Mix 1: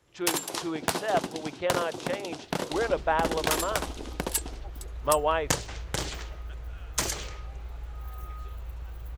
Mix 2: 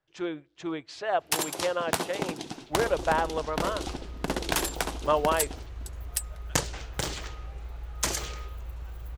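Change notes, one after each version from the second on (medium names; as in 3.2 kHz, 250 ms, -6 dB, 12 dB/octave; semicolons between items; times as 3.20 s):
first sound: entry +1.05 s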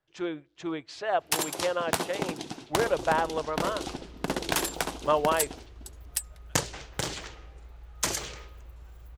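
second sound -8.5 dB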